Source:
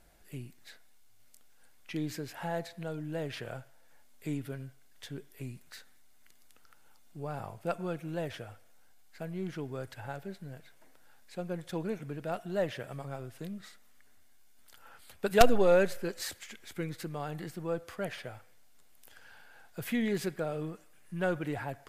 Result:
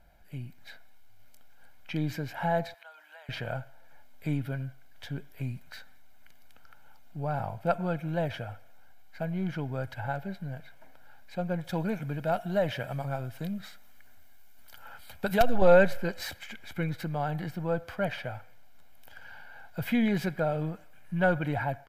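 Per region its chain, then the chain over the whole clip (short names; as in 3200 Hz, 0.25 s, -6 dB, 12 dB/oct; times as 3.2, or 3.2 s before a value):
2.74–3.29 HPF 920 Hz 24 dB/oct + compressor 2.5:1, threshold -56 dBFS
11.64–15.62 high shelf 4700 Hz +7 dB + compressor 3:1, threshold -27 dBFS
whole clip: bell 8500 Hz -13.5 dB 1.5 oct; comb 1.3 ms, depth 57%; AGC gain up to 5.5 dB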